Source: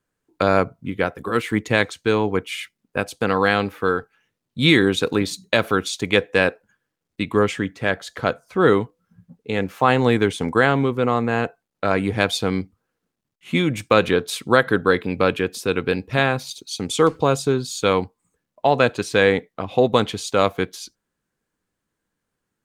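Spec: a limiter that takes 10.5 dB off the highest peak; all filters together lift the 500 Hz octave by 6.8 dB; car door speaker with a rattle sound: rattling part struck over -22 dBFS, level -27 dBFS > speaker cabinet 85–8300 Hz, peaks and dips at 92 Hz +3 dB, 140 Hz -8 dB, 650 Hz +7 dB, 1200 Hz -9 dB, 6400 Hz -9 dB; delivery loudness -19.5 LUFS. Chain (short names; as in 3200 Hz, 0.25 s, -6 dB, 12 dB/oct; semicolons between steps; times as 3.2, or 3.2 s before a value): bell 500 Hz +6 dB; limiter -9.5 dBFS; rattling part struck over -22 dBFS, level -27 dBFS; speaker cabinet 85–8300 Hz, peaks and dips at 92 Hz +3 dB, 140 Hz -8 dB, 650 Hz +7 dB, 1200 Hz -9 dB, 6400 Hz -9 dB; gain +2 dB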